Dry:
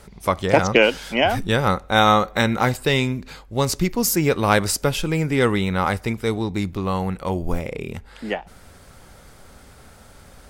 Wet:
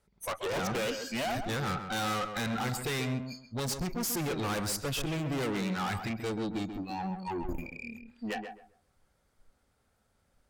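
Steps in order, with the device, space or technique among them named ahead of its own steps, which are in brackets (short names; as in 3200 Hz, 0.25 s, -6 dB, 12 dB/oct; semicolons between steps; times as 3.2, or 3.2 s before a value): spectral noise reduction 26 dB; rockabilly slapback (tube stage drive 31 dB, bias 0.3; tape echo 0.133 s, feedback 25%, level -5 dB, low-pass 1700 Hz)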